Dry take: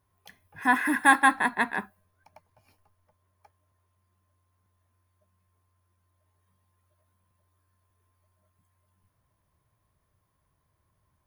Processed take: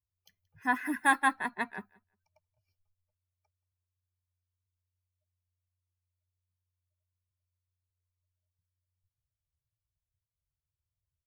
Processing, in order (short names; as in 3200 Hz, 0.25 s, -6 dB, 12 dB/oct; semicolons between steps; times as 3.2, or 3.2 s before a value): per-bin expansion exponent 1.5; on a send: feedback echo 0.177 s, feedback 16%, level -24 dB; on the sum: gain -5 dB